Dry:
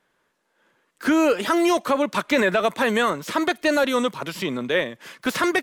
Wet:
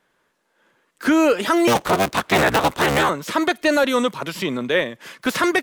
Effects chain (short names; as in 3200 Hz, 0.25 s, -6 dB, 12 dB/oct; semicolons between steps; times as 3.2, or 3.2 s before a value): 1.67–3.09 cycle switcher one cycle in 3, inverted; gain +2.5 dB